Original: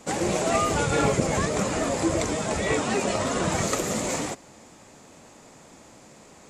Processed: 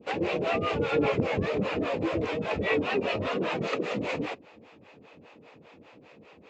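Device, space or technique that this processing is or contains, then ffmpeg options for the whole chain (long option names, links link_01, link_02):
guitar amplifier with harmonic tremolo: -filter_complex "[0:a]asettb=1/sr,asplit=3[link_01][link_02][link_03];[link_01]atrim=end=3.364[link_04];[link_02]atrim=start=3.36:end=3.97,asetpts=PTS-STARTPTS,afade=type=in:duration=0.004:curve=qsin,afade=type=out:start_time=0.606:duration=0.004:curve=qsin,highpass=frequency=140:width=0.5412,highpass=frequency=140:width=1.3066[link_05];[link_03]atrim=start=3.966[link_06];[link_04][link_05]acrossfade=duration=0.004:curve1=hsin:curve2=qsin[link_07];[link_07][link_06]acrossfade=duration=0.004:curve1=qsin:curve2=hsin,acrossover=split=480[link_08][link_09];[link_08]aeval=exprs='val(0)*(1-1/2+1/2*cos(2*PI*5*n/s))':channel_layout=same[link_10];[link_09]aeval=exprs='val(0)*(1-1/2-1/2*cos(2*PI*5*n/s))':channel_layout=same[link_11];[link_10][link_11]amix=inputs=2:normalize=0,asoftclip=type=tanh:threshold=-18dB,highpass=85,equalizer=frequency=90:width_type=q:width=4:gain=4,equalizer=frequency=300:width_type=q:width=4:gain=3,equalizer=frequency=460:width_type=q:width=4:gain=8,equalizer=frequency=2600:width_type=q:width=4:gain=9,lowpass=frequency=3900:width=0.5412,lowpass=frequency=3900:width=1.3066"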